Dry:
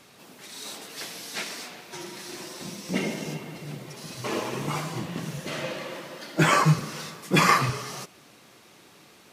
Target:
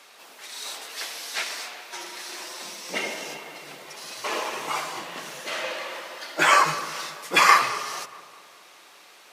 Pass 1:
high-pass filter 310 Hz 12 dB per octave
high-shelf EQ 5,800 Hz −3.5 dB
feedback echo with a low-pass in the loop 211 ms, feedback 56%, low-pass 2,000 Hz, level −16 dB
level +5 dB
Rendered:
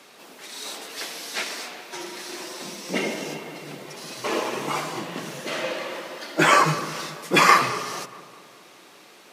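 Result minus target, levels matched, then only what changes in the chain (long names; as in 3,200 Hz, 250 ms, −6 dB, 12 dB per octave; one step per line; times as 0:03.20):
250 Hz band +9.5 dB
change: high-pass filter 660 Hz 12 dB per octave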